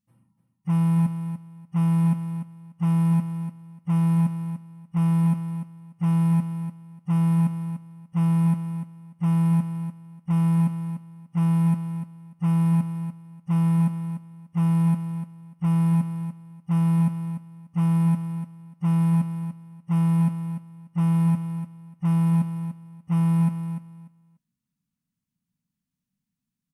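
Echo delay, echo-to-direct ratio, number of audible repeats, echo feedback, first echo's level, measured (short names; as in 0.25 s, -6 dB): 0.294 s, -9.5 dB, 2, 19%, -9.5 dB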